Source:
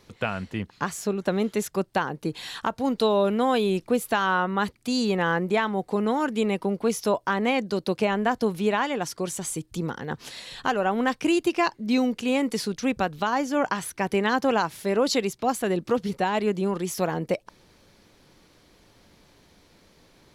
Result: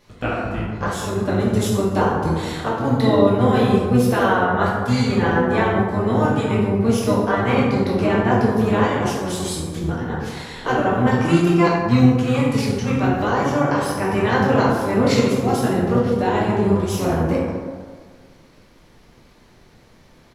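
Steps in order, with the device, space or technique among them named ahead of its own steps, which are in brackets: 1.39–2.52 s: graphic EQ 125/1000/2000/8000 Hz +4/+4/-4/+6 dB; plate-style reverb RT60 1.7 s, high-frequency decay 0.4×, DRR -7 dB; octave pedal (harmony voices -12 st -1 dB); trim -4 dB

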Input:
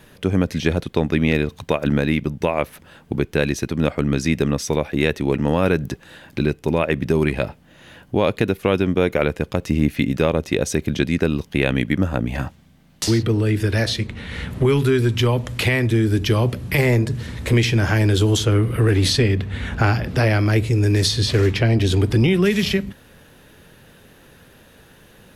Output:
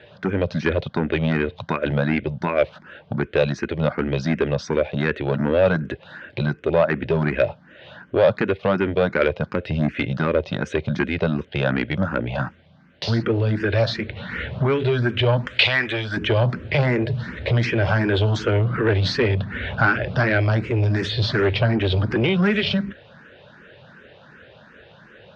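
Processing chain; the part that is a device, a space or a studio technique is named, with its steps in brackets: barber-pole phaser into a guitar amplifier (barber-pole phaser +2.7 Hz; saturation -15.5 dBFS, distortion -15 dB; cabinet simulation 91–4100 Hz, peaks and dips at 280 Hz -5 dB, 590 Hz +7 dB, 1.5 kHz +7 dB); 15.47–16.17 s: tilt shelf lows -9.5 dB, about 930 Hz; trim +3.5 dB

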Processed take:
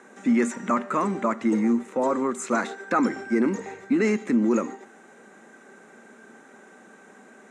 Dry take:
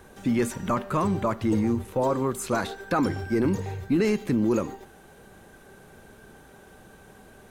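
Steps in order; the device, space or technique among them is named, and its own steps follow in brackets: television speaker (cabinet simulation 220–8300 Hz, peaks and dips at 230 Hz +7 dB, 1.3 kHz +5 dB, 2 kHz +7 dB, 3.2 kHz -6 dB, 4.6 kHz -8 dB, 7.2 kHz +6 dB)

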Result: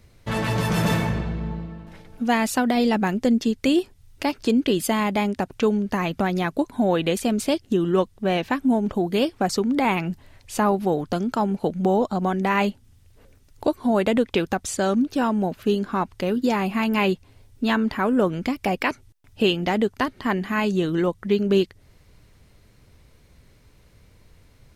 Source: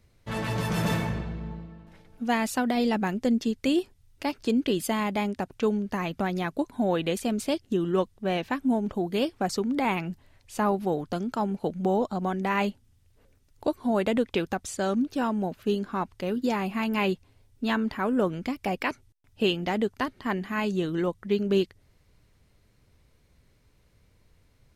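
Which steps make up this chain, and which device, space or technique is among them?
parallel compression (in parallel at -0.5 dB: compression, threshold -35 dBFS, peak gain reduction 15.5 dB); on the sum: trim +3 dB

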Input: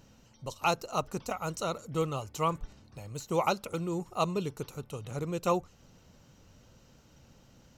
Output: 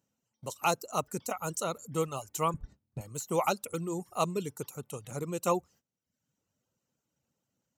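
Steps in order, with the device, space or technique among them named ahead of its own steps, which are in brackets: budget condenser microphone (high-pass 120 Hz 12 dB/octave; resonant high shelf 6.3 kHz +7.5 dB, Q 1.5); gate -53 dBFS, range -21 dB; reverb removal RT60 0.67 s; 2.54–3.01 s: RIAA curve playback

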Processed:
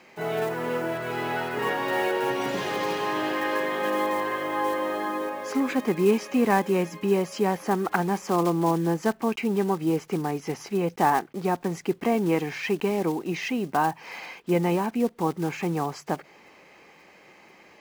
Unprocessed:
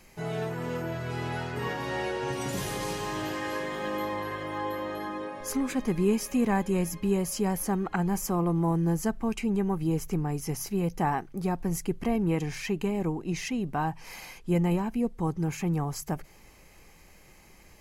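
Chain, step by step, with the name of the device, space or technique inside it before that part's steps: early digital voice recorder (band-pass 280–3400 Hz; block-companded coder 5-bit); trim +7 dB

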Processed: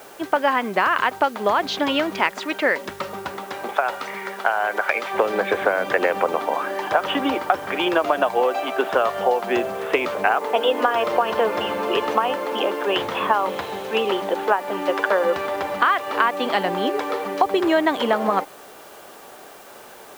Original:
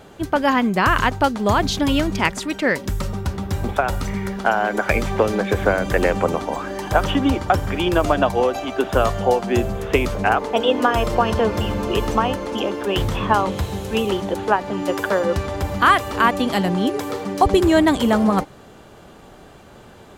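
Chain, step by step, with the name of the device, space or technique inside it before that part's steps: baby monitor (band-pass 470–3100 Hz; compression, threshold -19 dBFS, peak gain reduction 9.5 dB; white noise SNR 27 dB); 3.37–5.13 s: high-pass 290 Hz -> 710 Hz 6 dB/octave; trim +4.5 dB

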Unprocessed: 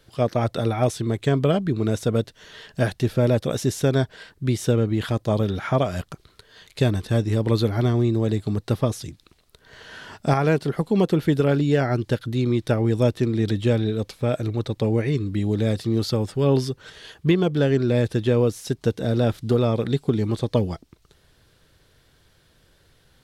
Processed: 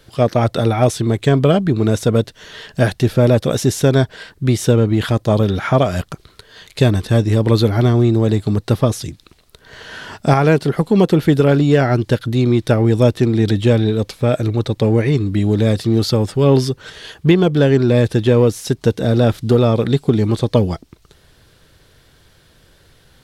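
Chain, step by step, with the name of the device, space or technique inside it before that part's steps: parallel distortion (in parallel at -12.5 dB: hard clipper -22 dBFS, distortion -8 dB); on the sum: trim +6 dB

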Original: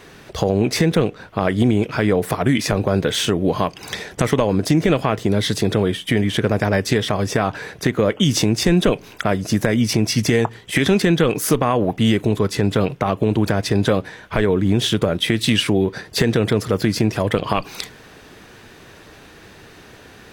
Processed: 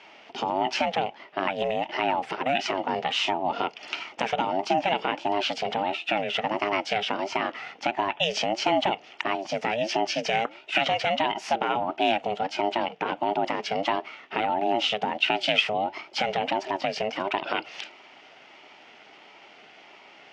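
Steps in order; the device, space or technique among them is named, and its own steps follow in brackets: voice changer toy (ring modulator with a swept carrier 410 Hz, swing 25%, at 1.5 Hz; cabinet simulation 430–4800 Hz, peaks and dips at 510 Hz -9 dB, 1.1 kHz -8 dB, 1.6 kHz -5 dB, 2.8 kHz +5 dB, 4 kHz -9 dB)

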